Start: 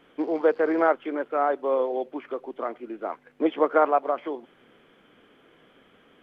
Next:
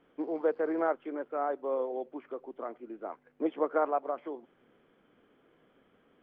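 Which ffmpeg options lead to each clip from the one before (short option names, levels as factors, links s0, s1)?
-af "highshelf=f=2200:g=-11.5,volume=0.447"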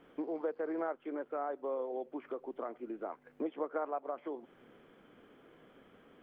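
-af "acompressor=threshold=0.00562:ratio=2.5,volume=1.88"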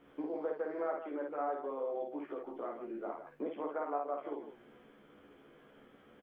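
-filter_complex "[0:a]asplit=2[s0][s1];[s1]adelay=14,volume=0.668[s2];[s0][s2]amix=inputs=2:normalize=0,asplit=2[s3][s4];[s4]aecho=0:1:52.48|157.4:0.708|0.355[s5];[s3][s5]amix=inputs=2:normalize=0,volume=0.668"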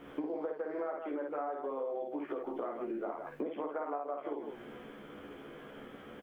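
-af "acompressor=threshold=0.00501:ratio=6,volume=3.55"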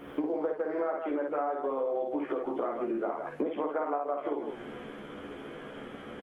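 -af "aecho=1:1:142|284|426|568:0.0794|0.0429|0.0232|0.0125,volume=2" -ar 48000 -c:a libopus -b:a 32k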